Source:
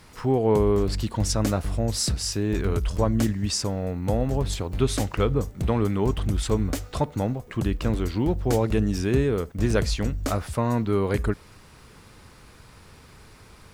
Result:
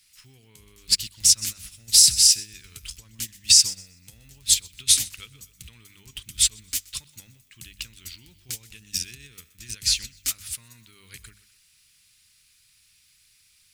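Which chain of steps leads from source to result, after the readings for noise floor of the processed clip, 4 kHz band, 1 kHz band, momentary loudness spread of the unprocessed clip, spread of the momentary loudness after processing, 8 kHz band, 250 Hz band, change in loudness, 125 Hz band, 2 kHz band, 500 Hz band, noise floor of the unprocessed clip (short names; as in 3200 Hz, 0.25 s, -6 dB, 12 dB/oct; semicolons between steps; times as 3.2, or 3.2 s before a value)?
-61 dBFS, +12.5 dB, under -25 dB, 6 LU, 22 LU, +14.5 dB, -27.5 dB, +6.0 dB, -21.5 dB, -3.5 dB, under -35 dB, -50 dBFS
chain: high shelf 4100 Hz +10.5 dB; notches 50/100/150/200/250 Hz; thinning echo 0.125 s, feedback 44%, level -13 dB; limiter -16.5 dBFS, peak gain reduction 10 dB; EQ curve 130 Hz 0 dB, 670 Hz -18 dB, 2500 Hz +15 dB; upward expander 2.5:1, over -26 dBFS; gain -1 dB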